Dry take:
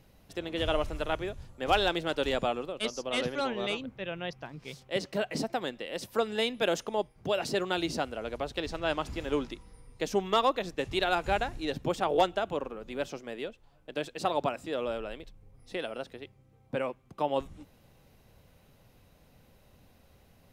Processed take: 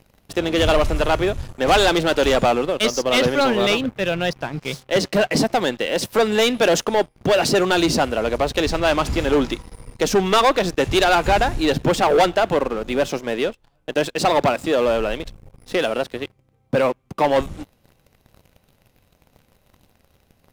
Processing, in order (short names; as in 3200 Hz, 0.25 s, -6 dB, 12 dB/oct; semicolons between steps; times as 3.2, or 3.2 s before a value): sample leveller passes 3; gain +5 dB